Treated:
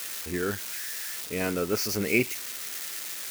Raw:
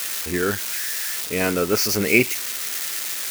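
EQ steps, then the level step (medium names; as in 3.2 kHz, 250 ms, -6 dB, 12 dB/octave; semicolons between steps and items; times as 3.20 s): bass shelf 490 Hz +3 dB; -8.5 dB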